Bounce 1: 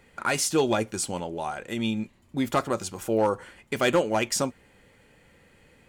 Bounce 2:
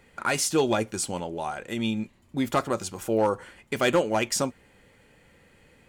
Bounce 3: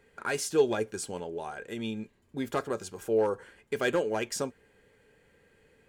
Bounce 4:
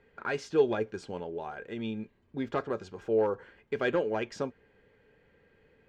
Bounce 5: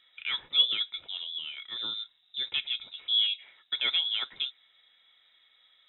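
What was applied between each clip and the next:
no processing that can be heard
hollow resonant body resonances 430/1,600 Hz, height 11 dB, ringing for 45 ms; level −8 dB
high-frequency loss of the air 200 metres
voice inversion scrambler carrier 3,800 Hz

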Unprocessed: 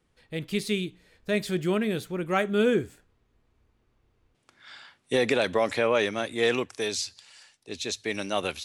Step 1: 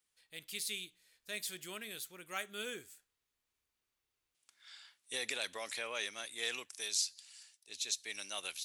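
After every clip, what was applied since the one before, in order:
first-order pre-emphasis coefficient 0.97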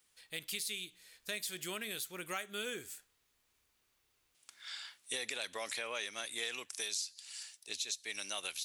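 downward compressor 4 to 1, threshold −48 dBFS, peak gain reduction 15.5 dB
level +10 dB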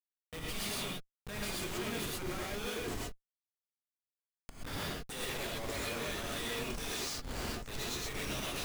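comparator with hysteresis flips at −43.5 dBFS
reverb whose tail is shaped and stops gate 150 ms rising, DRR −4 dB

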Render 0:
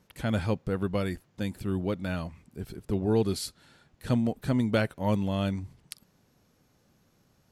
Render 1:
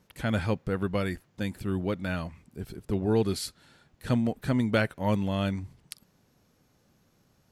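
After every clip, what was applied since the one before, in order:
dynamic equaliser 1,800 Hz, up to +4 dB, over −51 dBFS, Q 1.2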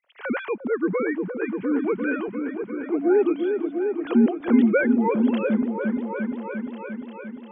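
three sine waves on the formant tracks
on a send: echo whose low-pass opens from repeat to repeat 349 ms, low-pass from 400 Hz, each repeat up 1 octave, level −3 dB
on the sum: level +4.5 dB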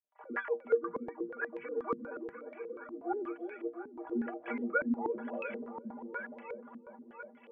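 low shelf with overshoot 430 Hz −11 dB, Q 1.5
stiff-string resonator 71 Hz, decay 0.29 s, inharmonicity 0.03
low-pass on a step sequencer 8.3 Hz 250–2,300 Hz
level −4 dB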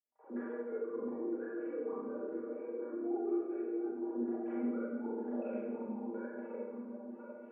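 downward compressor, threshold −37 dBFS, peak gain reduction 14.5 dB
resonant band-pass 330 Hz, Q 1.5
four-comb reverb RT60 1.3 s, combs from 29 ms, DRR −9.5 dB
level −2.5 dB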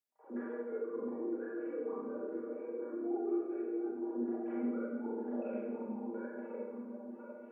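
high-pass filter 93 Hz

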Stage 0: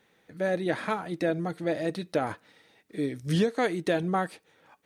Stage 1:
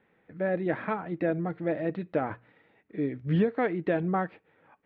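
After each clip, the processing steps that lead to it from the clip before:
low-pass filter 2,500 Hz 24 dB per octave
low-shelf EQ 360 Hz +3.5 dB
mains-hum notches 60/120 Hz
level −2 dB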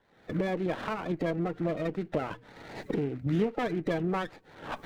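spectral magnitudes quantised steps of 30 dB
camcorder AGC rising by 52 dB per second
windowed peak hold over 9 samples
level −2 dB

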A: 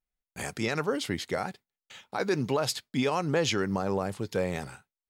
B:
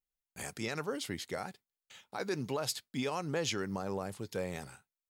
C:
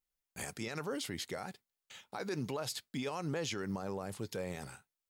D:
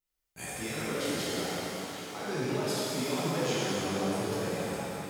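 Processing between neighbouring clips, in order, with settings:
high-shelf EQ 6,000 Hz +7.5 dB; level −8 dB
brickwall limiter −30.5 dBFS, peak gain reduction 9 dB; level +2 dB
reverb with rising layers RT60 3.5 s, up +7 semitones, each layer −8 dB, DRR −9.5 dB; level −3 dB

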